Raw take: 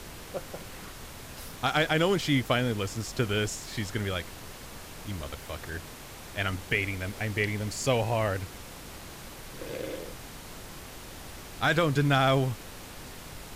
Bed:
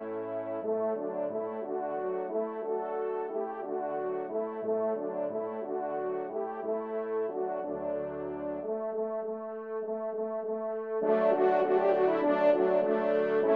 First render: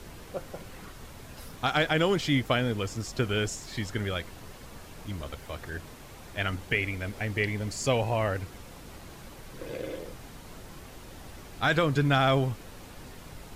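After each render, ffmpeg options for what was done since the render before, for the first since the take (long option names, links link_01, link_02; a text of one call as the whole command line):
ffmpeg -i in.wav -af "afftdn=noise_reduction=6:noise_floor=-45" out.wav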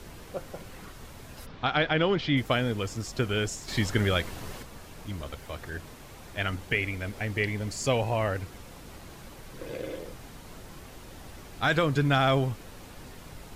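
ffmpeg -i in.wav -filter_complex "[0:a]asplit=3[link_01][link_02][link_03];[link_01]afade=type=out:start_time=1.45:duration=0.02[link_04];[link_02]lowpass=frequency=4400:width=0.5412,lowpass=frequency=4400:width=1.3066,afade=type=in:start_time=1.45:duration=0.02,afade=type=out:start_time=2.36:duration=0.02[link_05];[link_03]afade=type=in:start_time=2.36:duration=0.02[link_06];[link_04][link_05][link_06]amix=inputs=3:normalize=0,asettb=1/sr,asplit=3[link_07][link_08][link_09];[link_07]atrim=end=3.684[link_10];[link_08]atrim=start=3.68:end=4.63,asetpts=PTS-STARTPTS,afade=type=in:duration=0.004:curve=qsin,afade=type=out:start_time=0.946:duration=0.004:curve=qsin,acontrast=55[link_11];[link_09]atrim=start=4.626[link_12];[link_10][link_11]acrossfade=duration=0.004:curve1=hsin:curve2=qsin[link_13];[link_13][link_12]acrossfade=duration=0.004:curve1=qsin:curve2=hsin" out.wav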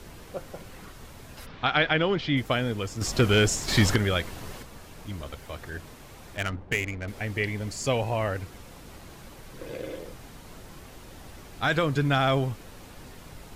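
ffmpeg -i in.wav -filter_complex "[0:a]asettb=1/sr,asplit=3[link_01][link_02][link_03];[link_01]atrim=end=1.374[link_04];[link_02]atrim=start=1.37:end=1.97,asetpts=PTS-STARTPTS,afade=type=in:duration=0.004:curve=qsin,afade=type=out:start_time=0.596:duration=0.004:curve=qsin,equalizer=frequency=2200:width_type=o:width=2:gain=4.5[link_05];[link_03]atrim=start=1.966[link_06];[link_04][link_05]acrossfade=duration=0.004:curve1=hsin:curve2=qsin[link_07];[link_07][link_06]acrossfade=duration=0.004:curve1=qsin:curve2=hsin,asettb=1/sr,asplit=3[link_08][link_09][link_10];[link_08]atrim=end=3.014[link_11];[link_09]atrim=start=3.01:end=3.96,asetpts=PTS-STARTPTS,afade=type=in:duration=0.004:curve=qsin,afade=type=out:start_time=0.946:duration=0.004:curve=qsin,aeval=exprs='0.211*sin(PI/2*1.78*val(0)/0.211)':channel_layout=same[link_12];[link_10]atrim=start=3.956[link_13];[link_11][link_12]acrossfade=duration=0.004:curve1=hsin:curve2=qsin[link_14];[link_14][link_13]acrossfade=duration=0.004:curve1=qsin:curve2=hsin,asettb=1/sr,asplit=3[link_15][link_16][link_17];[link_15]atrim=end=6.374[link_18];[link_16]atrim=start=6.37:end=7.08,asetpts=PTS-STARTPTS,afade=type=in:duration=0.004:curve=qsin,afade=type=out:start_time=0.706:duration=0.004:curve=qsin,adynamicsmooth=sensitivity=5.5:basefreq=850[link_19];[link_17]atrim=start=7.076[link_20];[link_18][link_19]acrossfade=duration=0.004:curve1=hsin:curve2=qsin[link_21];[link_21][link_20]acrossfade=duration=0.004:curve1=qsin:curve2=hsin" out.wav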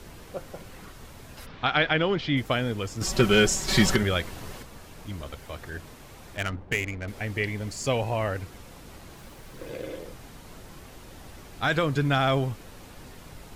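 ffmpeg -i in.wav -filter_complex "[0:a]asettb=1/sr,asplit=3[link_01][link_02][link_03];[link_01]atrim=end=3.024[link_04];[link_02]atrim=start=3.02:end=4.03,asetpts=PTS-STARTPTS,afade=type=in:duration=0.004:curve=qsin,afade=type=out:start_time=1.006:duration=0.004:curve=qsin,aecho=1:1:5.3:0.65,atrim=end_sample=44541[link_05];[link_03]atrim=start=4.026[link_06];[link_04][link_05]acrossfade=duration=0.004:curve1=hsin:curve2=qsin[link_07];[link_07][link_06]acrossfade=duration=0.004:curve1=qsin:curve2=hsin,asettb=1/sr,asplit=3[link_08][link_09][link_10];[link_08]atrim=end=7.424[link_11];[link_09]atrim=start=7.42:end=7.94,asetpts=PTS-STARTPTS,afade=type=in:duration=0.004:curve=qsin,afade=type=out:start_time=0.516:duration=0.004:curve=qsin,aeval=exprs='sgn(val(0))*max(abs(val(0))-0.00112,0)':channel_layout=same[link_12];[link_10]atrim=start=7.936[link_13];[link_11][link_12]acrossfade=duration=0.004:curve1=hsin:curve2=qsin[link_14];[link_14][link_13]acrossfade=duration=0.004:curve1=qsin:curve2=hsin,asettb=1/sr,asplit=3[link_15][link_16][link_17];[link_15]atrim=end=9.164[link_18];[link_16]atrim=start=9.16:end=9.85,asetpts=PTS-STARTPTS,afade=type=in:duration=0.004:curve=qsin,afade=type=out:start_time=0.686:duration=0.004:curve=qsin,aeval=exprs='val(0)*gte(abs(val(0)),0.002)':channel_layout=same[link_19];[link_17]atrim=start=9.846[link_20];[link_18][link_19]acrossfade=duration=0.004:curve1=hsin:curve2=qsin[link_21];[link_21][link_20]acrossfade=duration=0.004:curve1=qsin:curve2=hsin" out.wav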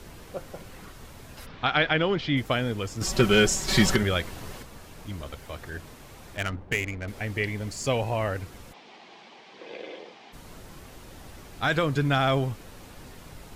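ffmpeg -i in.wav -filter_complex "[0:a]asplit=3[link_01][link_02][link_03];[link_01]afade=type=out:start_time=8.72:duration=0.02[link_04];[link_02]highpass=frequency=240:width=0.5412,highpass=frequency=240:width=1.3066,equalizer=frequency=290:width_type=q:width=4:gain=-8,equalizer=frequency=540:width_type=q:width=4:gain=-6,equalizer=frequency=780:width_type=q:width=4:gain=6,equalizer=frequency=1400:width_type=q:width=4:gain=-6,equalizer=frequency=2300:width_type=q:width=4:gain=4,equalizer=frequency=3200:width_type=q:width=4:gain=4,lowpass=frequency=5100:width=0.5412,lowpass=frequency=5100:width=1.3066,afade=type=in:start_time=8.72:duration=0.02,afade=type=out:start_time=10.32:duration=0.02[link_05];[link_03]afade=type=in:start_time=10.32:duration=0.02[link_06];[link_04][link_05][link_06]amix=inputs=3:normalize=0" out.wav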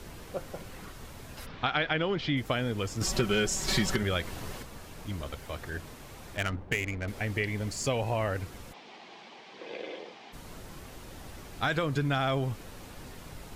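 ffmpeg -i in.wav -af "acompressor=threshold=-26dB:ratio=3" out.wav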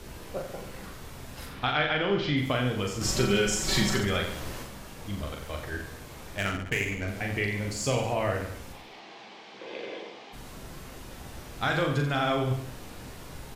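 ffmpeg -i in.wav -filter_complex "[0:a]asplit=2[link_01][link_02];[link_02]adelay=15,volume=-11dB[link_03];[link_01][link_03]amix=inputs=2:normalize=0,aecho=1:1:40|86|138.9|199.7|269.7:0.631|0.398|0.251|0.158|0.1" out.wav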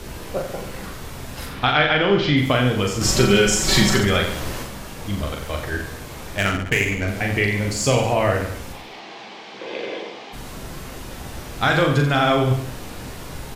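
ffmpeg -i in.wav -af "volume=9dB" out.wav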